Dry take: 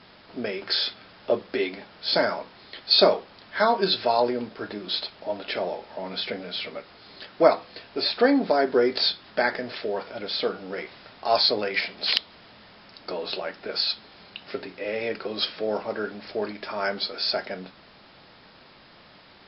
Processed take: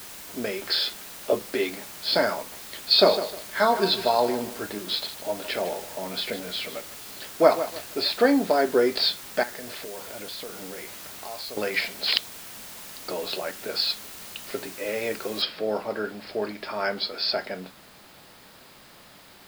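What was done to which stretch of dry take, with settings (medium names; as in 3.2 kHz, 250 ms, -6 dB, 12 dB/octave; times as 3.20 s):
0.78–1.33 s: steep high-pass 160 Hz 48 dB/octave
2.36–8.00 s: bit-crushed delay 154 ms, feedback 35%, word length 6-bit, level -11.5 dB
9.43–11.57 s: compression, threshold -35 dBFS
15.42 s: noise floor step -42 dB -56 dB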